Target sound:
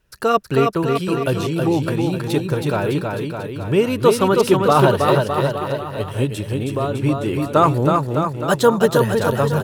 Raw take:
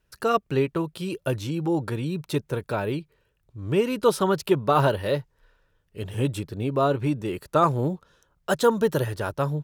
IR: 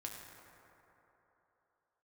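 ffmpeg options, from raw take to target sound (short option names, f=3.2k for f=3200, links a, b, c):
-filter_complex "[0:a]asettb=1/sr,asplit=3[a][b][c];[a]atrim=end=6.244[d];[b]atrim=start=6.24:end=7,asetpts=PTS-STARTPTS,afade=t=in:d=0.004:c=qsin,afade=t=out:st=0.756:d=0.004:c=qsin,acompressor=threshold=-25dB:ratio=6[e];[c]atrim=start=6.996[f];[d][e]acrossfade=d=0.004:c1=hsin:c2=qsin[g];[g][f]acrossfade=d=0.004:c1=qsin:c2=hsin,aecho=1:1:320|608|867.2|1100|1310:0.631|0.398|0.251|0.158|0.1,volume=5.5dB"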